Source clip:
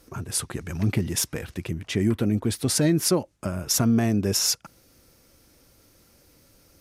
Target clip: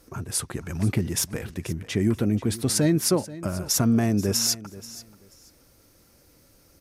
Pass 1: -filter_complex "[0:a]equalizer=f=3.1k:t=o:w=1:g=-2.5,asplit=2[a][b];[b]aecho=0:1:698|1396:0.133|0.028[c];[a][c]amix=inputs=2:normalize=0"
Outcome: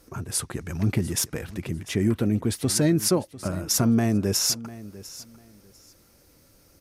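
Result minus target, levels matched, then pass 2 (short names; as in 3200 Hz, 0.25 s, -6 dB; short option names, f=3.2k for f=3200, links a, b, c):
echo 0.215 s late
-filter_complex "[0:a]equalizer=f=3.1k:t=o:w=1:g=-2.5,asplit=2[a][b];[b]aecho=0:1:483|966:0.133|0.028[c];[a][c]amix=inputs=2:normalize=0"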